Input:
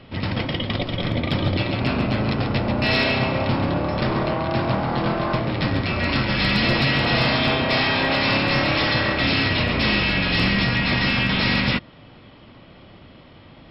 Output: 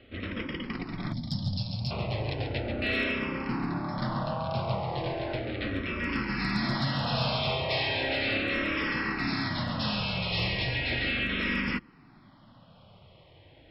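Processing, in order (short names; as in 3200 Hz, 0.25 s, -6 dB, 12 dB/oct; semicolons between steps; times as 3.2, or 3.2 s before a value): 1.13–1.91 EQ curve 210 Hz 0 dB, 400 Hz -17 dB, 820 Hz -11 dB, 1300 Hz -21 dB, 3000 Hz -10 dB, 5000 Hz +10 dB; endless phaser -0.36 Hz; gain -6.5 dB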